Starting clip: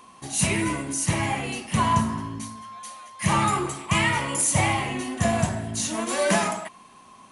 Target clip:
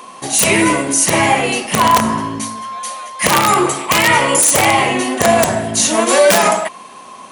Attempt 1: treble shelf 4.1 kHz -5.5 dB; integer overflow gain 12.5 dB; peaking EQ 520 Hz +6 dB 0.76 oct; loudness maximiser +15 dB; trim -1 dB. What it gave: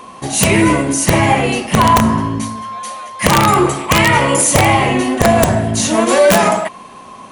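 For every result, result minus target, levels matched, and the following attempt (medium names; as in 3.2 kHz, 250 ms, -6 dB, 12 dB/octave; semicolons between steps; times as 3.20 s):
250 Hz band +4.0 dB; 8 kHz band -3.5 dB
treble shelf 4.1 kHz -5.5 dB; integer overflow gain 12.5 dB; high-pass 310 Hz 6 dB/octave; peaking EQ 520 Hz +6 dB 0.76 oct; loudness maximiser +15 dB; trim -1 dB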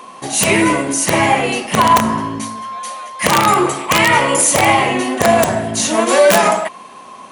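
8 kHz band -2.5 dB
integer overflow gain 12.5 dB; high-pass 310 Hz 6 dB/octave; peaking EQ 520 Hz +6 dB 0.76 oct; loudness maximiser +15 dB; trim -1 dB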